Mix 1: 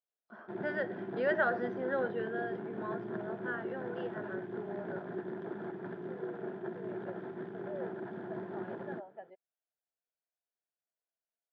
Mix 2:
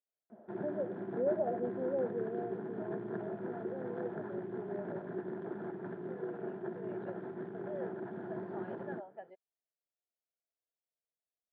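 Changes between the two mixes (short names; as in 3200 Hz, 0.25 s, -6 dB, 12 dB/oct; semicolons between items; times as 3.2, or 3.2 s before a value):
first voice: add steep low-pass 700 Hz; background: add LPF 1600 Hz 6 dB/oct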